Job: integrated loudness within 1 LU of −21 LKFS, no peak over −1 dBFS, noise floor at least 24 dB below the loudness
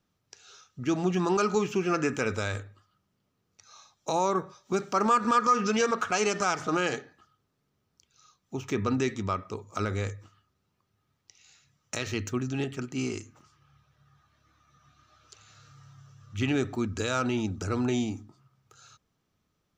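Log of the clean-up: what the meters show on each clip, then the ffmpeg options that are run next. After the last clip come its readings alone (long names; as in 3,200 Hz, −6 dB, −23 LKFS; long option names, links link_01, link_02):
integrated loudness −29.0 LKFS; sample peak −13.0 dBFS; target loudness −21.0 LKFS
→ -af "volume=8dB"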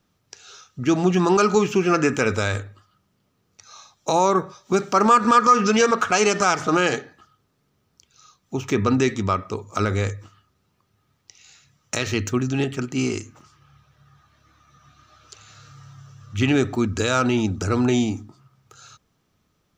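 integrated loudness −21.0 LKFS; sample peak −5.0 dBFS; background noise floor −69 dBFS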